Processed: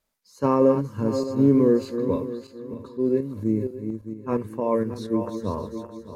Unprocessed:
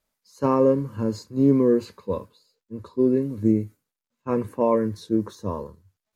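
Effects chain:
feedback delay that plays each chunk backwards 309 ms, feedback 52%, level −8.5 dB
0:02.74–0:05.42: shaped tremolo saw up 4.3 Hz, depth 50%

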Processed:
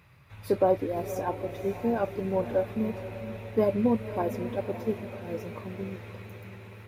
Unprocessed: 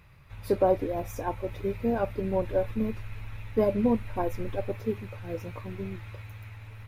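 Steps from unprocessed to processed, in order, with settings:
high-pass filter 89 Hz
on a send: feedback delay with all-pass diffusion 551 ms, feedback 49%, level −11.5 dB

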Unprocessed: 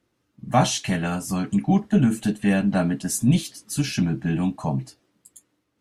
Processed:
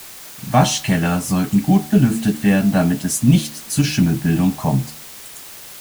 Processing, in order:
high-pass filter 48 Hz 12 dB per octave
low-shelf EQ 72 Hz +9.5 dB
hum removal 75.2 Hz, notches 18
in parallel at 0 dB: speech leveller 0.5 s
on the sum: bit-depth reduction 6 bits, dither triangular
level −1 dB

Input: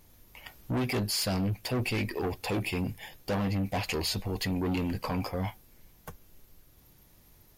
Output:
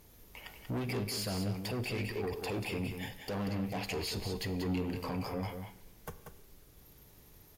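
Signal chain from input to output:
parametric band 430 Hz +7 dB 0.25 octaves
brickwall limiter −31 dBFS, peak gain reduction 10.5 dB
harmonic generator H 4 −32 dB, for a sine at −31 dBFS
single-tap delay 187 ms −7 dB
four-comb reverb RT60 0.78 s, combs from 33 ms, DRR 14 dB

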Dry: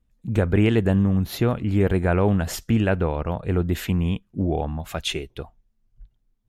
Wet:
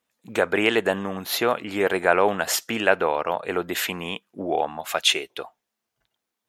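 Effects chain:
high-pass filter 610 Hz 12 dB per octave
level +8 dB

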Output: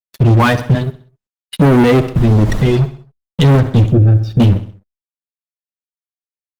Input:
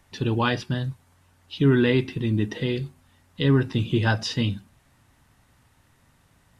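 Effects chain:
spectral dynamics exaggerated over time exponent 2
0:00.75–0:01.57: high-pass filter 230 Hz 12 dB per octave
spectral tilt −2.5 dB per octave
leveller curve on the samples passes 5
0:02.15–0:02.72: background noise brown −23 dBFS
0:03.90–0:04.40: moving average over 44 samples
bit reduction 10 bits
repeating echo 64 ms, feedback 45%, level −17 dB
boost into a limiter +11 dB
level −4.5 dB
Opus 24 kbit/s 48,000 Hz

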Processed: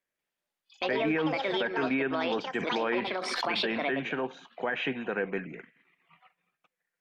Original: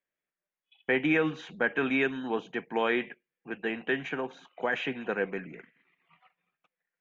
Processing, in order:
delay with pitch and tempo change per echo 190 ms, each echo +6 semitones, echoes 2
treble cut that deepens with the level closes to 2,300 Hz, closed at −23 dBFS
brickwall limiter −22.5 dBFS, peak gain reduction 10.5 dB
0:02.58–0:03.88: background raised ahead of every attack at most 24 dB per second
level +2.5 dB

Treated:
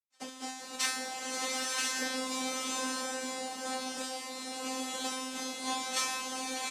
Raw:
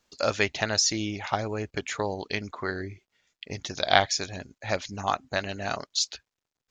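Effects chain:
spectrum averaged block by block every 100 ms
downward expander −49 dBFS
high-shelf EQ 3,700 Hz +10 dB
automatic gain control gain up to 11.5 dB
on a send: single-tap delay 976 ms −4 dB
on the sum: cochlear-implant simulation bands 2
high-pass filter 190 Hz 12 dB per octave
tuned comb filter 260 Hz, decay 0.94 s, mix 100%
transient designer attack +8 dB, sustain 0 dB
slow-attack reverb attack 970 ms, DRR −2 dB

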